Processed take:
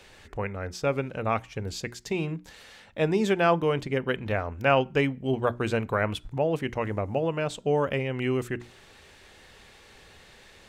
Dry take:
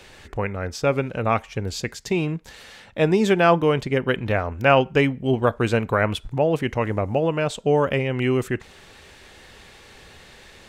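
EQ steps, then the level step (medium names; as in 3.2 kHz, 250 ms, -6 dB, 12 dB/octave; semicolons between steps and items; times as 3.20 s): hum notches 60/120/180/240/300/360 Hz; -5.5 dB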